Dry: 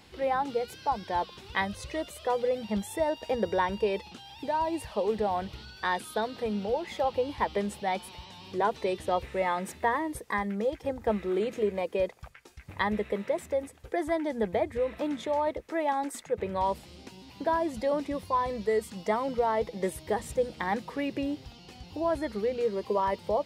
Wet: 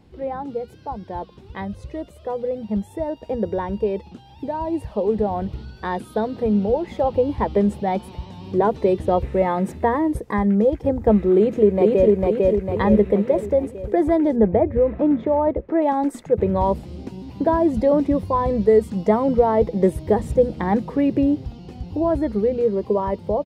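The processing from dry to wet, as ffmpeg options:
-filter_complex "[0:a]asplit=2[s0][s1];[s1]afade=t=in:st=11.35:d=0.01,afade=t=out:st=12.14:d=0.01,aecho=0:1:450|900|1350|1800|2250|2700|3150|3600:0.891251|0.490188|0.269603|0.148282|0.081555|0.0448553|0.0246704|0.0135687[s2];[s0][s2]amix=inputs=2:normalize=0,asettb=1/sr,asplit=3[s3][s4][s5];[s3]atrim=end=14.364[s6];[s4]atrim=start=14.36:end=15.82,asetpts=PTS-STARTPTS,afade=t=in:d=0.004:c=qsin,afade=t=out:st=1.456:d=0.004:c=qsin,lowpass=2100[s7];[s5]atrim=start=15.816[s8];[s6][s7]acrossfade=d=0.004:c1=hsin:c2=qsin[s9];[s9][s8]acrossfade=d=0.004:c1=qsin:c2=hsin,tiltshelf=f=800:g=10,dynaudnorm=f=500:g=21:m=3.76,volume=0.794"

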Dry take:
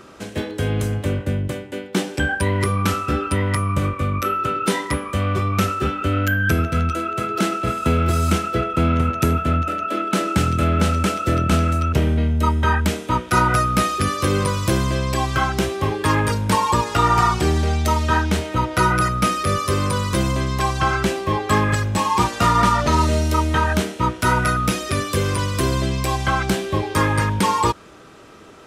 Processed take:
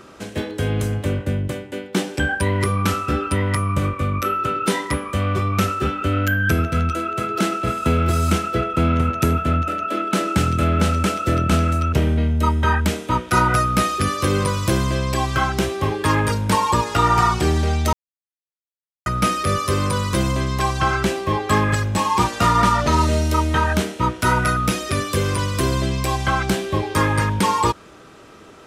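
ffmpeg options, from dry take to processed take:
-filter_complex "[0:a]asplit=3[s0][s1][s2];[s0]atrim=end=17.93,asetpts=PTS-STARTPTS,afade=t=out:st=17.926:d=0.004:c=hsin[s3];[s1]atrim=start=17.93:end=19.06,asetpts=PTS-STARTPTS,volume=0[s4];[s2]atrim=start=19.06,asetpts=PTS-STARTPTS,afade=t=in:d=0.004:c=hsin[s5];[s3][s4][s5]concat=n=3:v=0:a=1"

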